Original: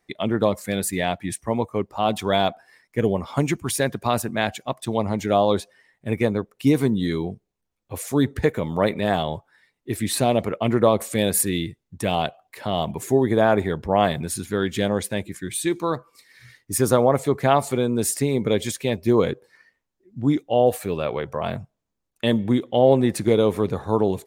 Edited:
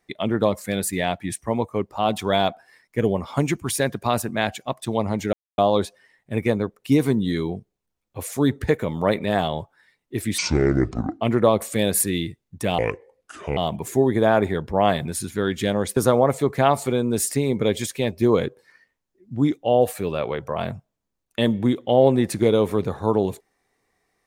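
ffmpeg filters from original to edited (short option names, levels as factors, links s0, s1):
-filter_complex "[0:a]asplit=7[s0][s1][s2][s3][s4][s5][s6];[s0]atrim=end=5.33,asetpts=PTS-STARTPTS,afade=t=out:st=5.326:d=0.004:c=hsin,apad=pad_dur=0.25[s7];[s1]atrim=start=5.33:end=10.134,asetpts=PTS-STARTPTS,afade=t=in:d=0.004:c=hsin[s8];[s2]atrim=start=10.13:end=10.6,asetpts=PTS-STARTPTS,asetrate=25137,aresample=44100,atrim=end_sample=36363,asetpts=PTS-STARTPTS[s9];[s3]atrim=start=10.596:end=12.184[s10];[s4]atrim=start=12.18:end=12.72,asetpts=PTS-STARTPTS,asetrate=30429,aresample=44100,atrim=end_sample=34513,asetpts=PTS-STARTPTS[s11];[s5]atrim=start=12.716:end=15.122[s12];[s6]atrim=start=16.818[s13];[s7][s8]concat=n=2:v=0:a=1[s14];[s14][s9]acrossfade=d=0.004:c1=hsin:c2=hsin[s15];[s15][s10]acrossfade=d=0.004:c1=hsin:c2=hsin[s16];[s16][s11]acrossfade=d=0.004:c1=hsin:c2=hsin[s17];[s17][s12]acrossfade=d=0.004:c1=hsin:c2=hsin[s18];[s18][s13]acrossfade=d=0.004:c1=hsin:c2=hsin"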